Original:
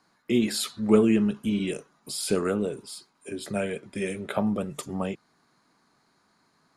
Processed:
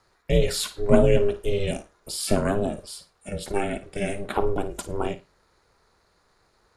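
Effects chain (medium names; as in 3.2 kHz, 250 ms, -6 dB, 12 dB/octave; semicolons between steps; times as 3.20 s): ring modulator 200 Hz; bass shelf 220 Hz +3.5 dB; on a send: flutter echo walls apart 9.3 m, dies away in 0.24 s; on the sum: trim +4.5 dB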